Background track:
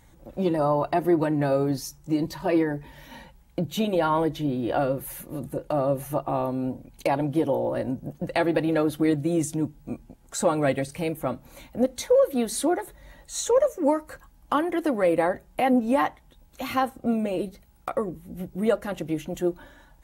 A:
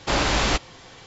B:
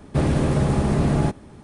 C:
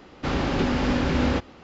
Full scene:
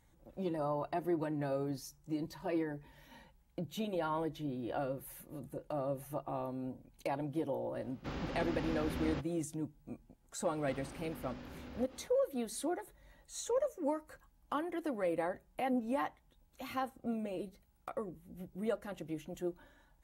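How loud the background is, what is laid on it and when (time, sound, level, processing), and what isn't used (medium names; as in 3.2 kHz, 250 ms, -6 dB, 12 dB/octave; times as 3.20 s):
background track -13 dB
7.81 s: add C -16.5 dB
10.45 s: add C -9 dB + compression 8:1, threshold -37 dBFS
not used: A, B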